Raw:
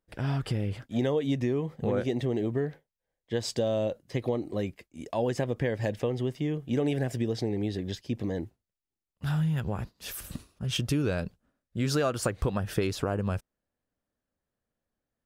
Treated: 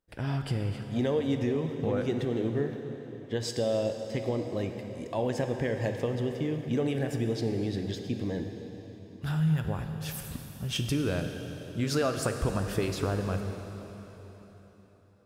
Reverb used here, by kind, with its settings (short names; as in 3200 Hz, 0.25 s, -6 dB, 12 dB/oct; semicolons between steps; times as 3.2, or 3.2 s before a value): plate-style reverb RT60 4.1 s, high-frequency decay 0.9×, DRR 5 dB; gain -1.5 dB